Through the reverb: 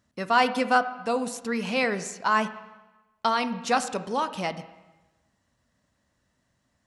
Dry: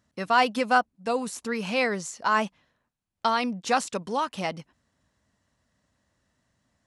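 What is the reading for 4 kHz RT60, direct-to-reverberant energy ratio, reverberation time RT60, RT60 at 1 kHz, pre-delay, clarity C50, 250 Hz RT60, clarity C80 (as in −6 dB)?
1.0 s, 11.0 dB, 1.1 s, 1.1 s, 7 ms, 13.5 dB, 1.1 s, 15.0 dB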